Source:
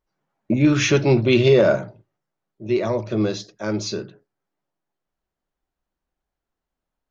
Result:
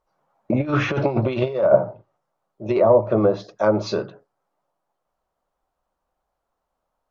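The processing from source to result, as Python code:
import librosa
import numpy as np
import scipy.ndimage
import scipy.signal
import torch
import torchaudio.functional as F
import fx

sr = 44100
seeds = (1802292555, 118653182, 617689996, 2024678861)

y = fx.over_compress(x, sr, threshold_db=-19.0, ratio=-0.5)
y = fx.band_shelf(y, sr, hz=800.0, db=10.5, octaves=1.7)
y = fx.env_lowpass_down(y, sr, base_hz=880.0, full_db=-10.5)
y = y * librosa.db_to_amplitude(-1.5)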